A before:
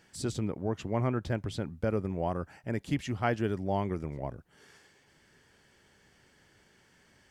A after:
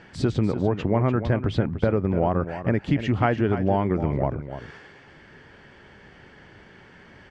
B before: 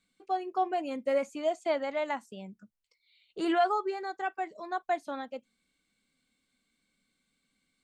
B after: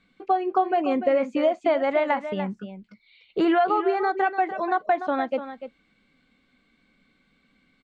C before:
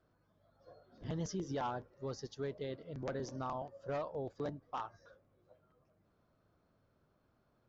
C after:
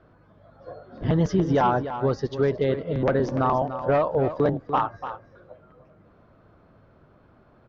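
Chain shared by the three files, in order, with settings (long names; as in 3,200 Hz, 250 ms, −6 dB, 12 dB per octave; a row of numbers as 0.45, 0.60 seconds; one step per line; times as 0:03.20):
low-pass filter 2,600 Hz 12 dB per octave
downward compressor 4 to 1, threshold −34 dBFS
on a send: single-tap delay 294 ms −11 dB
on the sum: loudness normalisation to −24 LKFS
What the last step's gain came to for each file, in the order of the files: +15.0, +14.5, +18.5 decibels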